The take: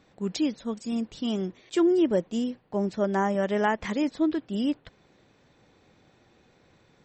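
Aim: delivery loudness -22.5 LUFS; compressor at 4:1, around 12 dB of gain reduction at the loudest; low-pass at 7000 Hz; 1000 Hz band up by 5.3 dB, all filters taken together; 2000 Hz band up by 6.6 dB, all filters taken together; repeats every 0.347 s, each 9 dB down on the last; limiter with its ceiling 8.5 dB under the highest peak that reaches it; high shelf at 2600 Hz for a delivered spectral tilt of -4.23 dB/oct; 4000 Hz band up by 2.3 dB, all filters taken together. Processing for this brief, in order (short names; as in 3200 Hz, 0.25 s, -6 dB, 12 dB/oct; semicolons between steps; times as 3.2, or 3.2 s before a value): LPF 7000 Hz; bell 1000 Hz +5.5 dB; bell 2000 Hz +7 dB; high shelf 2600 Hz -3.5 dB; bell 4000 Hz +3 dB; compressor 4:1, threshold -32 dBFS; limiter -29 dBFS; feedback echo 0.347 s, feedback 35%, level -9 dB; gain +15.5 dB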